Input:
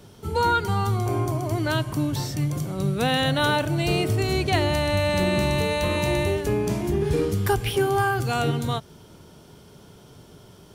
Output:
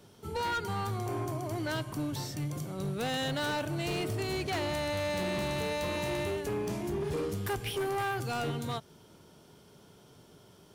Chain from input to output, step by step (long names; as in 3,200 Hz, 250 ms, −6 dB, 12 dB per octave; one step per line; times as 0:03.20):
low-shelf EQ 95 Hz −9.5 dB
hard clipping −22 dBFS, distortion −12 dB
level −7 dB